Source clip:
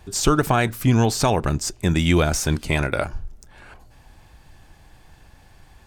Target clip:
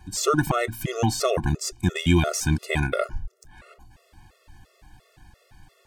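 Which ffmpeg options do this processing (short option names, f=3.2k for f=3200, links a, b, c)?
-af "afftfilt=real='re*gt(sin(2*PI*2.9*pts/sr)*(1-2*mod(floor(b*sr/1024/360),2)),0)':imag='im*gt(sin(2*PI*2.9*pts/sr)*(1-2*mod(floor(b*sr/1024/360),2)),0)':win_size=1024:overlap=0.75"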